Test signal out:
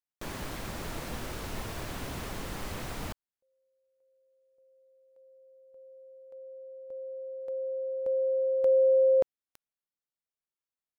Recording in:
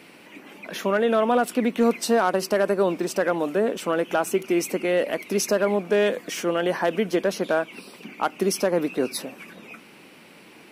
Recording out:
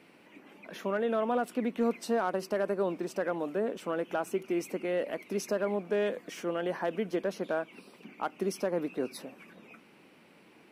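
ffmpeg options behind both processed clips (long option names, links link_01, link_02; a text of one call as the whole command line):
ffmpeg -i in.wav -af "highshelf=frequency=2600:gain=-7,volume=-8.5dB" out.wav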